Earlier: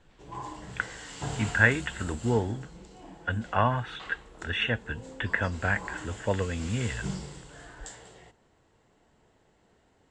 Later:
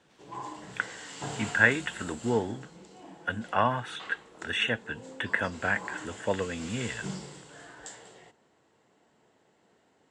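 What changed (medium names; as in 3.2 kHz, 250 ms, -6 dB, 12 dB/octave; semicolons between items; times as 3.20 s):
speech: remove low-pass 4.1 kHz 12 dB/octave; master: add high-pass 170 Hz 12 dB/octave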